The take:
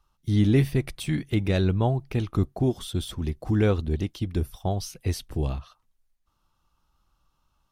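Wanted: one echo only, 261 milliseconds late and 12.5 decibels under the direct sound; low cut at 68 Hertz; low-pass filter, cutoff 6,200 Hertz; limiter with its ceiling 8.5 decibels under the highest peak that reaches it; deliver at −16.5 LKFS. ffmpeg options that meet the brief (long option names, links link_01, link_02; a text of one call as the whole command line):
ffmpeg -i in.wav -af "highpass=68,lowpass=6200,alimiter=limit=-18.5dB:level=0:latency=1,aecho=1:1:261:0.237,volume=13dB" out.wav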